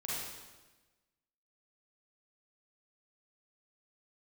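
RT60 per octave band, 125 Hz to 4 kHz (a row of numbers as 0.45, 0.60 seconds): 1.4, 1.4, 1.2, 1.2, 1.1, 1.1 seconds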